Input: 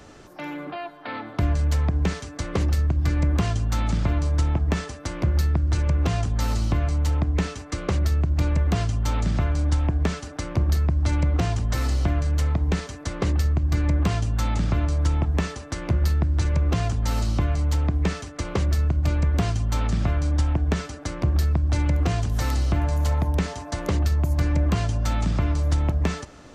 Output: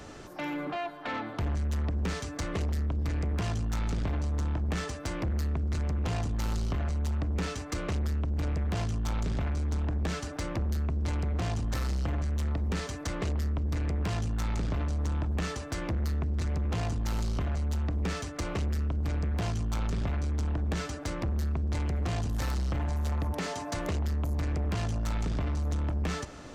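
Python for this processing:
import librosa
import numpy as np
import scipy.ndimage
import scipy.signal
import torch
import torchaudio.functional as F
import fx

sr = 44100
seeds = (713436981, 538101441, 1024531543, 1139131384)

p1 = fx.highpass(x, sr, hz=fx.line((23.32, 360.0), (23.75, 90.0)), slope=12, at=(23.32, 23.75), fade=0.02)
p2 = fx.rider(p1, sr, range_db=4, speed_s=0.5)
p3 = p1 + (p2 * 10.0 ** (-1.0 / 20.0))
p4 = 10.0 ** (-20.5 / 20.0) * np.tanh(p3 / 10.0 ** (-20.5 / 20.0))
y = p4 * 10.0 ** (-6.5 / 20.0)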